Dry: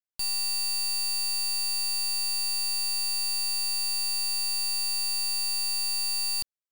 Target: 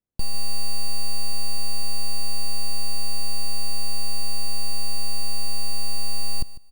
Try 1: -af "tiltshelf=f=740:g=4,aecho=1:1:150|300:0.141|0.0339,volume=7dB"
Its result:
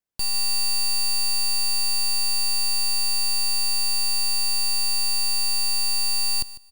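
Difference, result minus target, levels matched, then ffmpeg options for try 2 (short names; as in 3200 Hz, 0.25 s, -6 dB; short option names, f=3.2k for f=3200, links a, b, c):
1000 Hz band -8.0 dB
-af "tiltshelf=f=740:g=13.5,aecho=1:1:150|300:0.141|0.0339,volume=7dB"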